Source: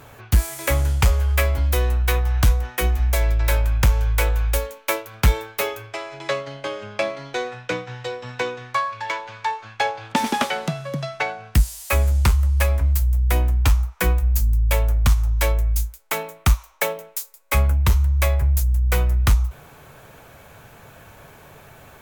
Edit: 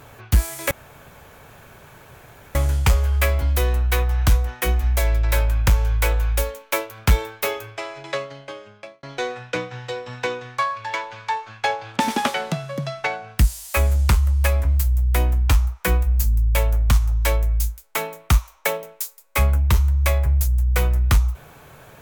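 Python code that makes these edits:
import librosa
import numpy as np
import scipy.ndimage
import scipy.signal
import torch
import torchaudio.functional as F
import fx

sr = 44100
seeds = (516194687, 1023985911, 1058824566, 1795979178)

y = fx.edit(x, sr, fx.insert_room_tone(at_s=0.71, length_s=1.84),
    fx.fade_out_span(start_s=6.06, length_s=1.13), tone=tone)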